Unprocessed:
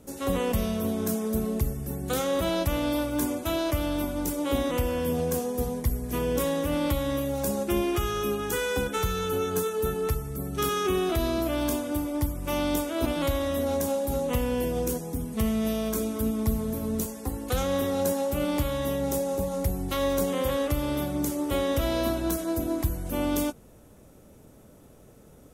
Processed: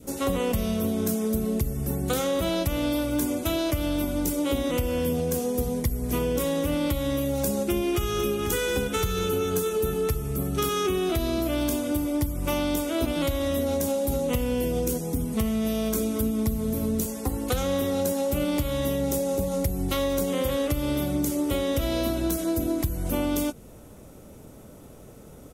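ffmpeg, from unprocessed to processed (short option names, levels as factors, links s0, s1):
-filter_complex "[0:a]asplit=2[s0][s1];[s1]afade=t=in:st=7.69:d=0.01,afade=t=out:st=8.5:d=0.01,aecho=0:1:490|980|1470|1960|2450|2940|3430|3920:0.266073|0.172947|0.112416|0.0730702|0.0474956|0.0308721|0.0200669|0.0130435[s2];[s0][s2]amix=inputs=2:normalize=0,bandreject=f=1700:w=17,adynamicequalizer=threshold=0.00562:dfrequency=990:dqfactor=1.2:tfrequency=990:tqfactor=1.2:attack=5:release=100:ratio=0.375:range=3:mode=cutabove:tftype=bell,acompressor=threshold=0.0398:ratio=6,volume=2"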